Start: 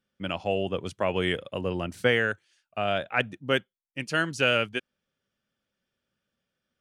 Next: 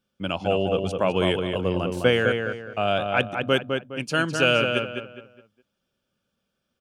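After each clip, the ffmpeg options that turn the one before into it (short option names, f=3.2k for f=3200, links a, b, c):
-filter_complex "[0:a]equalizer=f=1.9k:w=5:g=-11.5,asplit=2[a][b];[b]adelay=207,lowpass=f=2.7k:p=1,volume=-4.5dB,asplit=2[c][d];[d]adelay=207,lowpass=f=2.7k:p=1,volume=0.34,asplit=2[e][f];[f]adelay=207,lowpass=f=2.7k:p=1,volume=0.34,asplit=2[g][h];[h]adelay=207,lowpass=f=2.7k:p=1,volume=0.34[i];[c][e][g][i]amix=inputs=4:normalize=0[j];[a][j]amix=inputs=2:normalize=0,volume=4dB"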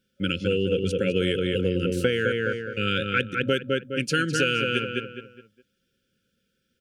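-af "afftfilt=real='re*(1-between(b*sr/4096,550,1300))':imag='im*(1-between(b*sr/4096,550,1300))':win_size=4096:overlap=0.75,acompressor=threshold=-24dB:ratio=6,volume=4.5dB"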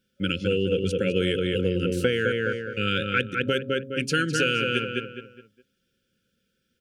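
-af "bandreject=f=134.6:t=h:w=4,bandreject=f=269.2:t=h:w=4,bandreject=f=403.8:t=h:w=4,bandreject=f=538.4:t=h:w=4,bandreject=f=673:t=h:w=4"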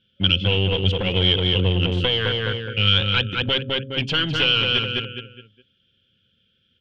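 -af "aeval=exprs='clip(val(0),-1,0.0422)':c=same,lowpass=f=3.2k:t=q:w=8.6,equalizer=f=99:t=o:w=1.2:g=12"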